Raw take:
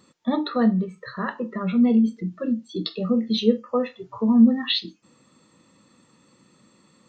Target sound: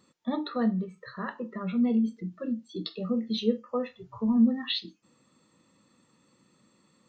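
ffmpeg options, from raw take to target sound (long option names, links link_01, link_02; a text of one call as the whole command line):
ffmpeg -i in.wav -filter_complex "[0:a]asplit=3[link_01][link_02][link_03];[link_01]afade=type=out:start_time=3.89:duration=0.02[link_04];[link_02]asubboost=boost=4.5:cutoff=150,afade=type=in:start_time=3.89:duration=0.02,afade=type=out:start_time=4.36:duration=0.02[link_05];[link_03]afade=type=in:start_time=4.36:duration=0.02[link_06];[link_04][link_05][link_06]amix=inputs=3:normalize=0,volume=-7dB" out.wav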